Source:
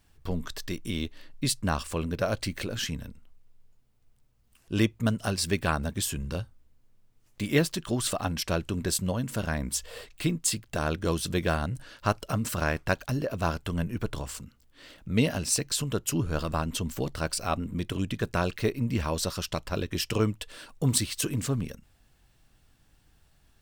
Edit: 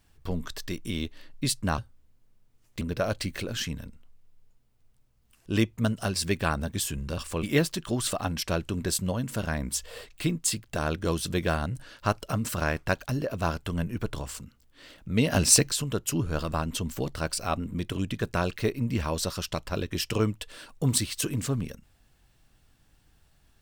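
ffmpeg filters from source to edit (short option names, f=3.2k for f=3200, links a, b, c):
-filter_complex "[0:a]asplit=7[a][b][c][d][e][f][g];[a]atrim=end=1.782[h];[b]atrim=start=6.398:end=7.432[i];[c]atrim=start=2.028:end=6.402[j];[d]atrim=start=1.778:end=2.032[k];[e]atrim=start=7.428:end=15.322[l];[f]atrim=start=15.318:end=15.712,asetpts=PTS-STARTPTS,volume=8dB[m];[g]atrim=start=15.708[n];[h][i]acrossfade=d=0.004:c1=hsin:c2=hsin[o];[o][j]acrossfade=d=0.004:c1=hsin:c2=hsin[p];[p][k]acrossfade=d=0.004:c1=hsin:c2=hsin[q];[q][l]acrossfade=d=0.004:c1=hsin:c2=hsin[r];[r][m]acrossfade=d=0.004:c1=hsin:c2=hsin[s];[s][n]acrossfade=d=0.004:c1=hsin:c2=hsin"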